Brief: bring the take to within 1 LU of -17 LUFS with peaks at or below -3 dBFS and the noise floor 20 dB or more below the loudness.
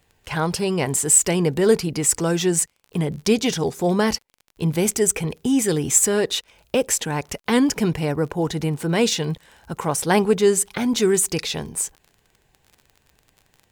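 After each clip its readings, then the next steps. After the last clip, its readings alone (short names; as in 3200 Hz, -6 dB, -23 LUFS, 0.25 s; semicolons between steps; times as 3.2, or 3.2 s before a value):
ticks 28/s; loudness -20.5 LUFS; peak -2.5 dBFS; loudness target -17.0 LUFS
-> de-click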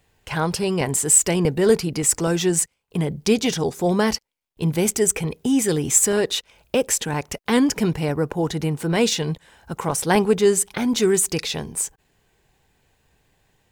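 ticks 0.95/s; loudness -20.5 LUFS; peak -2.5 dBFS; loudness target -17.0 LUFS
-> gain +3.5 dB; limiter -3 dBFS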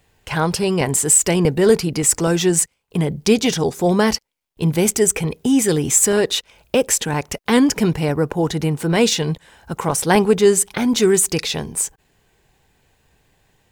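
loudness -17.5 LUFS; peak -3.0 dBFS; noise floor -63 dBFS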